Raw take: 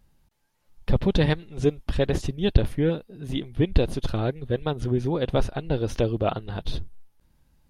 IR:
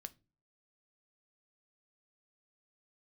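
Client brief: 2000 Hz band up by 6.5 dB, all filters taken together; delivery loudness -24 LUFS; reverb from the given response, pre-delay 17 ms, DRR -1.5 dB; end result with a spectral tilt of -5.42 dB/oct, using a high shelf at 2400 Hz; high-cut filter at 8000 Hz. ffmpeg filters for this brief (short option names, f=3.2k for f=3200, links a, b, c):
-filter_complex "[0:a]lowpass=8k,equalizer=f=2k:t=o:g=6.5,highshelf=f=2.4k:g=3.5,asplit=2[a][b];[1:a]atrim=start_sample=2205,adelay=17[c];[b][c]afir=irnorm=-1:irlink=0,volume=7dB[d];[a][d]amix=inputs=2:normalize=0,volume=-2.5dB"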